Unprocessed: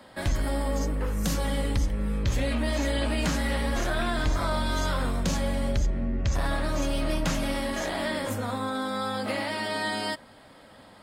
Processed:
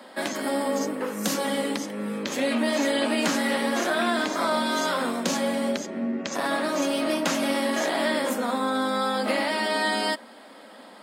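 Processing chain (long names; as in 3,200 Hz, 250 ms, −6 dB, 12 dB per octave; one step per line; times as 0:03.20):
Chebyshev high-pass filter 220 Hz, order 4
level +5.5 dB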